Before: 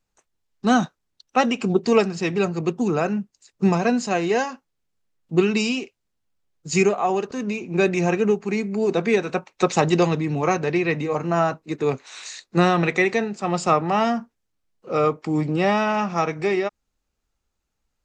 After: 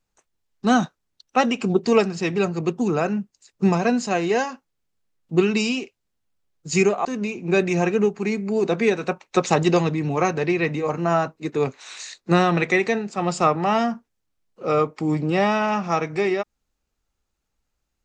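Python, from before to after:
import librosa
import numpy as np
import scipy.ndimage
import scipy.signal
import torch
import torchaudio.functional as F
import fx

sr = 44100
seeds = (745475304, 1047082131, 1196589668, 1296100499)

y = fx.edit(x, sr, fx.cut(start_s=7.05, length_s=0.26), tone=tone)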